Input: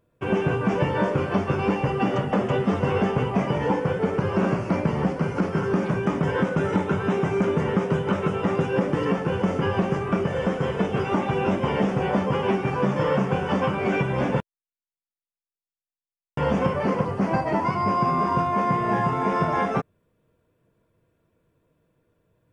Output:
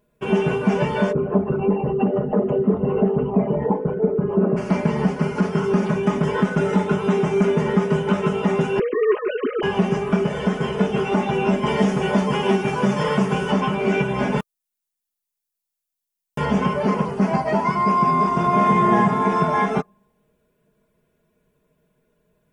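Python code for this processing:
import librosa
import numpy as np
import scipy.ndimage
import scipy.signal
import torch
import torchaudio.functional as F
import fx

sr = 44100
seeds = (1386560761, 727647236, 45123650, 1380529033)

y = fx.envelope_sharpen(x, sr, power=2.0, at=(1.11, 4.56), fade=0.02)
y = fx.sine_speech(y, sr, at=(8.79, 9.63))
y = fx.high_shelf(y, sr, hz=4700.0, db=8.5, at=(11.66, 13.51))
y = fx.high_shelf(y, sr, hz=5700.0, db=7.0, at=(14.32, 16.45))
y = fx.reverb_throw(y, sr, start_s=18.3, length_s=0.67, rt60_s=1.3, drr_db=-0.5)
y = fx.high_shelf(y, sr, hz=5700.0, db=5.5)
y = fx.notch(y, sr, hz=1200.0, q=26.0)
y = y + 0.89 * np.pad(y, (int(4.8 * sr / 1000.0), 0))[:len(y)]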